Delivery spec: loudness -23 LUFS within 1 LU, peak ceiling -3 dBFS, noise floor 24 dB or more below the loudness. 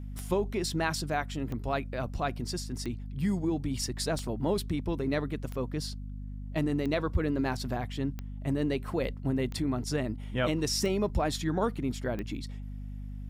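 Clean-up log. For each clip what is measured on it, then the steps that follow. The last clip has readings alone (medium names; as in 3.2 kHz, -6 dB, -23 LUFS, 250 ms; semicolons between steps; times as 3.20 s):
clicks found 10; hum 50 Hz; highest harmonic 250 Hz; hum level -37 dBFS; loudness -32.0 LUFS; peak level -15.5 dBFS; loudness target -23.0 LUFS
-> de-click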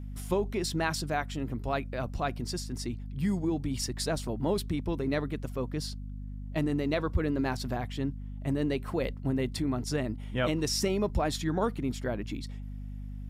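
clicks found 0; hum 50 Hz; highest harmonic 250 Hz; hum level -37 dBFS
-> hum notches 50/100/150/200/250 Hz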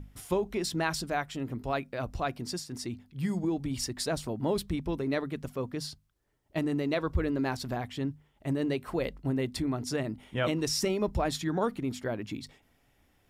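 hum not found; loudness -32.5 LUFS; peak level -15.5 dBFS; loudness target -23.0 LUFS
-> trim +9.5 dB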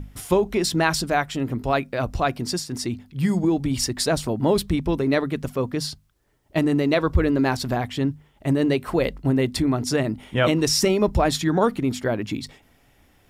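loudness -23.0 LUFS; peak level -6.0 dBFS; noise floor -59 dBFS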